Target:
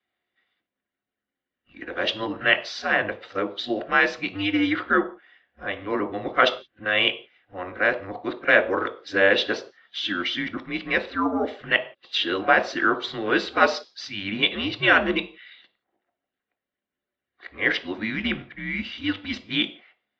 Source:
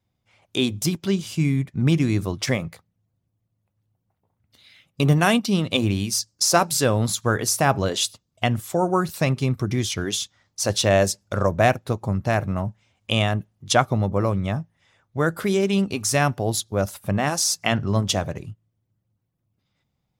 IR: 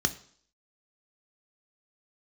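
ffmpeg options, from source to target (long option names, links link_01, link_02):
-filter_complex "[0:a]areverse,asplit=2[link_01][link_02];[1:a]atrim=start_sample=2205,afade=type=out:start_time=0.25:duration=0.01,atrim=end_sample=11466,asetrate=48510,aresample=44100[link_03];[link_02][link_03]afir=irnorm=-1:irlink=0,volume=-2dB[link_04];[link_01][link_04]amix=inputs=2:normalize=0,highpass=frequency=470:width_type=q:width=0.5412,highpass=frequency=470:width_type=q:width=1.307,lowpass=frequency=3600:width_type=q:width=0.5176,lowpass=frequency=3600:width_type=q:width=0.7071,lowpass=frequency=3600:width_type=q:width=1.932,afreqshift=-95"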